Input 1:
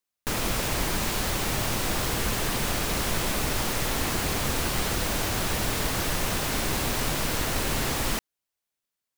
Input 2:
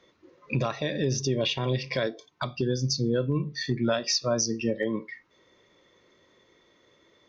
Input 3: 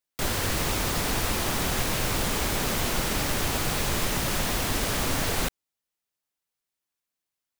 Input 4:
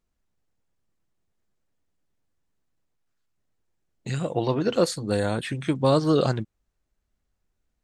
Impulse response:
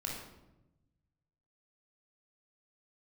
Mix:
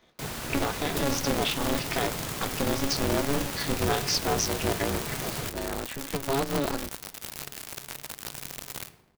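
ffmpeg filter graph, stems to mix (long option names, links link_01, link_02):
-filter_complex "[0:a]acrossover=split=91|7200[link_01][link_02][link_03];[link_01]acompressor=threshold=-43dB:ratio=4[link_04];[link_02]acompressor=threshold=-41dB:ratio=4[link_05];[link_03]acompressor=threshold=-44dB:ratio=4[link_06];[link_04][link_05][link_06]amix=inputs=3:normalize=0,acrusher=bits=4:mix=0:aa=0.000001,adelay=700,volume=2.5dB,asplit=2[link_07][link_08];[link_08]volume=-11dB[link_09];[1:a]volume=-1dB,asplit=2[link_10][link_11];[2:a]volume=-8.5dB[link_12];[3:a]adelay=450,volume=-7.5dB[link_13];[link_11]apad=whole_len=365425[link_14];[link_13][link_14]sidechaincompress=threshold=-42dB:ratio=8:attack=16:release=633[link_15];[4:a]atrim=start_sample=2205[link_16];[link_09][link_16]afir=irnorm=-1:irlink=0[link_17];[link_07][link_10][link_12][link_15][link_17]amix=inputs=5:normalize=0,aeval=exprs='val(0)*sgn(sin(2*PI*140*n/s))':channel_layout=same"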